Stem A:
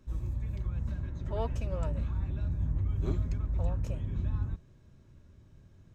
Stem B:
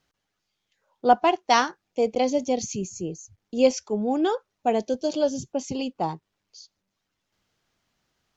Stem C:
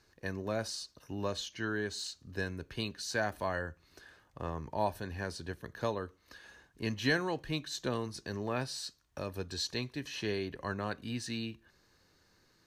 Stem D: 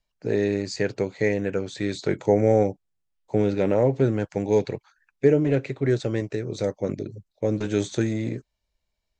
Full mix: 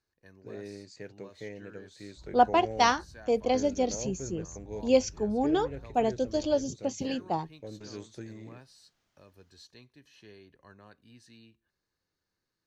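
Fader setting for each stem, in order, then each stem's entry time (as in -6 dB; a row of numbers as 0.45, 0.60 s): -17.5, -3.5, -17.5, -19.0 dB; 2.10, 1.30, 0.00, 0.20 s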